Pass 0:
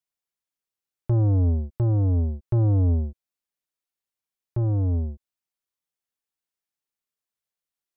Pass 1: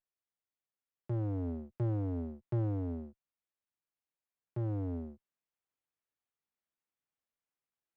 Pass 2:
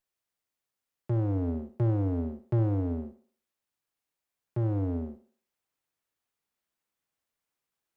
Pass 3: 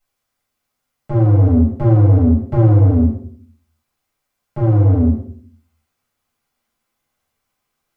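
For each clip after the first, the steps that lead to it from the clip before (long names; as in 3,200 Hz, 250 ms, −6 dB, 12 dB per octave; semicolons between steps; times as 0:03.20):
speech leveller 0.5 s; high-pass filter 120 Hz 24 dB per octave; windowed peak hold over 9 samples; level −7 dB
feedback echo with a high-pass in the loop 62 ms, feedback 43%, high-pass 180 Hz, level −12.5 dB; level +6.5 dB
convolution reverb RT60 0.45 s, pre-delay 4 ms, DRR −8 dB; level +2.5 dB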